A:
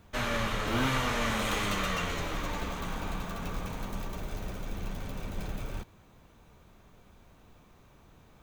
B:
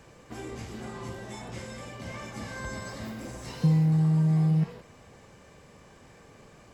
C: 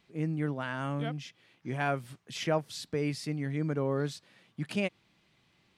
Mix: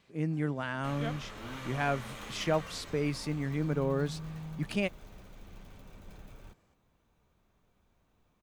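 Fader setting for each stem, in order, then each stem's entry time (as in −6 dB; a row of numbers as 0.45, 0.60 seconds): −14.0, −19.0, 0.0 decibels; 0.70, 0.00, 0.00 seconds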